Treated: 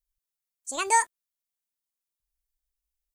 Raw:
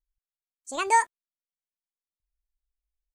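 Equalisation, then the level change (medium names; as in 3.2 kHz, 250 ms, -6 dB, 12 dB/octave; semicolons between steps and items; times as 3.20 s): treble shelf 5 kHz +11 dB; -2.0 dB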